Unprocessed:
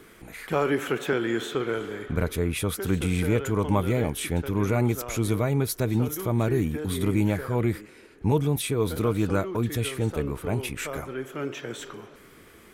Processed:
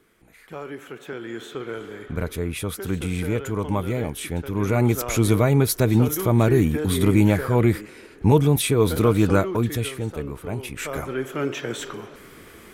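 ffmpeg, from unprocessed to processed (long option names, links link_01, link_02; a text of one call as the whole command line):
ffmpeg -i in.wav -af "volume=14.5dB,afade=type=in:start_time=0.95:duration=1.29:silence=0.316228,afade=type=in:start_time=4.48:duration=0.6:silence=0.421697,afade=type=out:start_time=9.34:duration=0.69:silence=0.375837,afade=type=in:start_time=10.67:duration=0.44:silence=0.398107" out.wav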